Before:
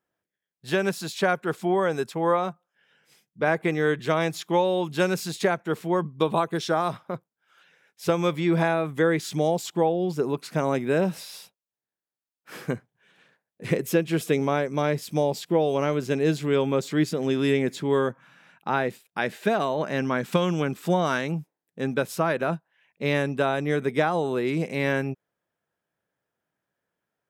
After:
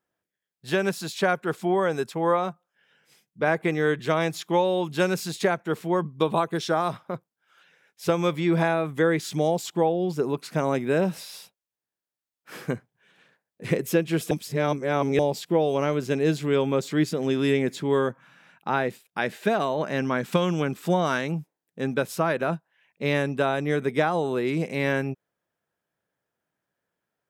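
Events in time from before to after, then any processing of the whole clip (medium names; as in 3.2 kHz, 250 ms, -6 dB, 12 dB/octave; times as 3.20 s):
14.31–15.19 s: reverse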